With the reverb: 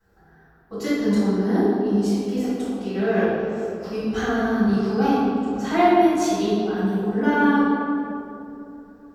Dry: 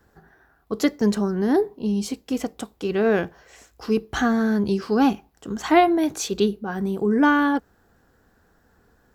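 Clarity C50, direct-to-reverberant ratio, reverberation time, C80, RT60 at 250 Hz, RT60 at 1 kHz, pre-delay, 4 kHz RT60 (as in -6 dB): -3.5 dB, -13.0 dB, 2.9 s, -1.0 dB, 3.5 s, 2.6 s, 4 ms, 1.4 s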